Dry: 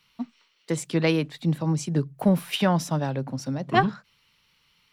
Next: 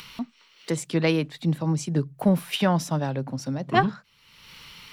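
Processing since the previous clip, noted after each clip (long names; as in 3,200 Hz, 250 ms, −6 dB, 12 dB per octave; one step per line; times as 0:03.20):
upward compression, threshold −29 dBFS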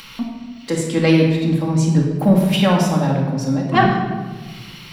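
rectangular room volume 1,300 cubic metres, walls mixed, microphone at 2.2 metres
level +3 dB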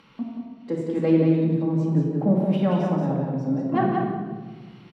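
resonant band-pass 340 Hz, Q 0.68
on a send: single-tap delay 180 ms −4 dB
on the sum: level −5 dB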